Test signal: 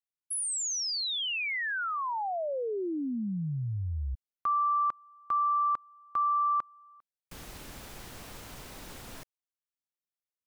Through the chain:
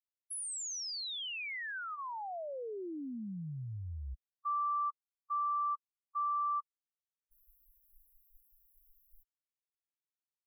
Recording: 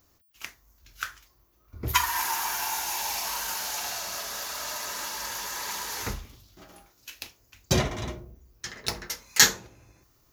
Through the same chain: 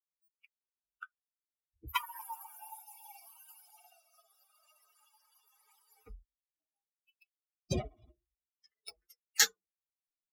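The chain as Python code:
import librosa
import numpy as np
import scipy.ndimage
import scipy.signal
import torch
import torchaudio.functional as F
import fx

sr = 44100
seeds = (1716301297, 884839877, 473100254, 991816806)

y = fx.bin_expand(x, sr, power=3.0)
y = y * 10.0 ** (-6.0 / 20.0)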